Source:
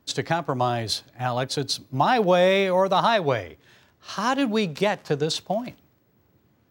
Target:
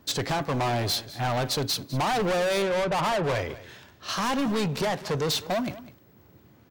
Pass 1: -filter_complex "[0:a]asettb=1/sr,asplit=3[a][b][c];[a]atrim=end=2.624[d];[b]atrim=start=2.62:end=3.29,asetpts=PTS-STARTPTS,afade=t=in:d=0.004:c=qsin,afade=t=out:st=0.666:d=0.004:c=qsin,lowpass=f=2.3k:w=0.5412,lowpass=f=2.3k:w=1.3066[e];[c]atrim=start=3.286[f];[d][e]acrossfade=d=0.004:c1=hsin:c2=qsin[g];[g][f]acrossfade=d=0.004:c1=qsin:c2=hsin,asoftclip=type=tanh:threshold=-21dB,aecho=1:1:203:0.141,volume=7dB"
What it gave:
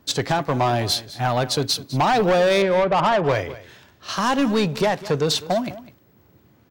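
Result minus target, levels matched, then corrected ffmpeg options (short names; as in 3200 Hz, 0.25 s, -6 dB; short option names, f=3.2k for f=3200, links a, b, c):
soft clip: distortion -6 dB
-filter_complex "[0:a]asettb=1/sr,asplit=3[a][b][c];[a]atrim=end=2.624[d];[b]atrim=start=2.62:end=3.29,asetpts=PTS-STARTPTS,afade=t=in:d=0.004:c=qsin,afade=t=out:st=0.666:d=0.004:c=qsin,lowpass=f=2.3k:w=0.5412,lowpass=f=2.3k:w=1.3066[e];[c]atrim=start=3.286[f];[d][e]acrossfade=d=0.004:c1=hsin:c2=qsin[g];[g][f]acrossfade=d=0.004:c1=qsin:c2=hsin,asoftclip=type=tanh:threshold=-30.5dB,aecho=1:1:203:0.141,volume=7dB"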